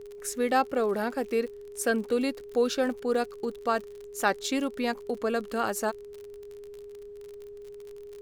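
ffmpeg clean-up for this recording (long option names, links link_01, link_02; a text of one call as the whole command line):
ffmpeg -i in.wav -af "adeclick=threshold=4,bandreject=frequency=410:width=30,agate=range=-21dB:threshold=-36dB" out.wav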